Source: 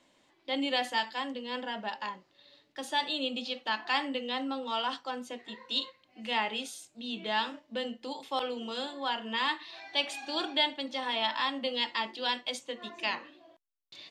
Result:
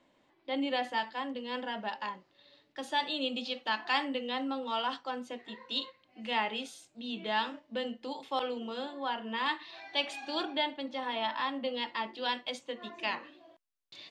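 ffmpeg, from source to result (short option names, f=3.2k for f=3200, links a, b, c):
-af "asetnsamples=n=441:p=0,asendcmd='1.36 lowpass f 4100;3.21 lowpass f 6900;4.04 lowpass f 3600;8.58 lowpass f 1700;9.46 lowpass f 3900;10.43 lowpass f 1700;12.16 lowpass f 3000;13.23 lowpass f 7700',lowpass=f=1.8k:p=1"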